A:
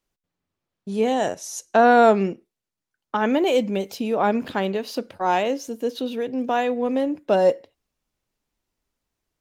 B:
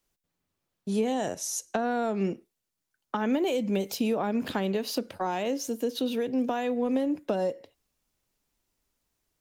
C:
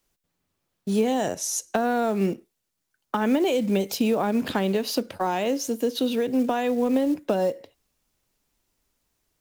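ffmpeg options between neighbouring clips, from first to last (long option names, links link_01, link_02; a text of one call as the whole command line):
ffmpeg -i in.wav -filter_complex "[0:a]acompressor=threshold=-20dB:ratio=6,highshelf=frequency=5500:gain=7,acrossover=split=330[link_01][link_02];[link_02]acompressor=threshold=-31dB:ratio=2.5[link_03];[link_01][link_03]amix=inputs=2:normalize=0" out.wav
ffmpeg -i in.wav -af "acrusher=bits=7:mode=log:mix=0:aa=0.000001,volume=4.5dB" out.wav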